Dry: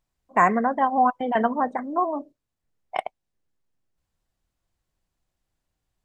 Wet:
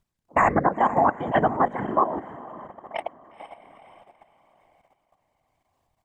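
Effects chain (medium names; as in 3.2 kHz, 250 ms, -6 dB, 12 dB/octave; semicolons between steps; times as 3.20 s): echo that smears into a reverb 479 ms, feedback 44%, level -14 dB; whisper effect; level held to a coarse grid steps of 11 dB; trim +4.5 dB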